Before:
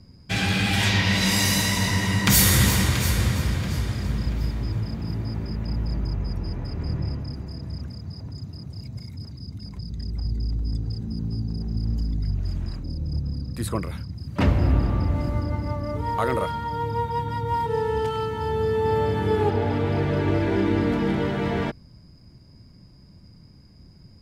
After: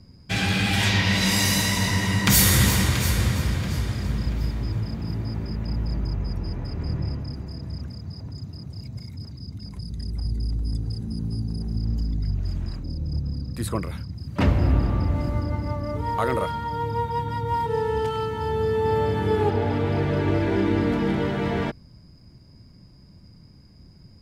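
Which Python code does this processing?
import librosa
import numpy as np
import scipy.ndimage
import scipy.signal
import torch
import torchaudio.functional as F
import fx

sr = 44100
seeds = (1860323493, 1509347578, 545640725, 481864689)

y = fx.peak_eq(x, sr, hz=10000.0, db=12.0, octaves=0.44, at=(9.7, 11.77))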